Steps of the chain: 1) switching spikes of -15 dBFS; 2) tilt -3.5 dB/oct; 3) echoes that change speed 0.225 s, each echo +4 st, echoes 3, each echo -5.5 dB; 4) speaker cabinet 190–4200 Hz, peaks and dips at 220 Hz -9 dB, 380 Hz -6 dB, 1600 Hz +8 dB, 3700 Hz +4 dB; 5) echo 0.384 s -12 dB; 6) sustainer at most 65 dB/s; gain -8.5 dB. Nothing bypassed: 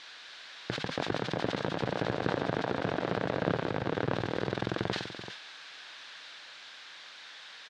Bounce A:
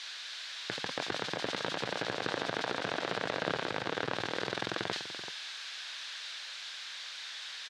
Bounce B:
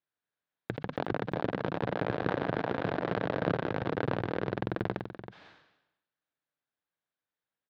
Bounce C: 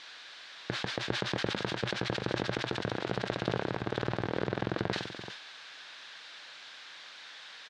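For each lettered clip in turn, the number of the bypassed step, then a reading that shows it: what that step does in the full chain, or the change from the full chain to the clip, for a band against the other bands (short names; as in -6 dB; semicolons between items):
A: 2, 125 Hz band -10.5 dB; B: 1, 4 kHz band -9.5 dB; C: 3, momentary loudness spread change -1 LU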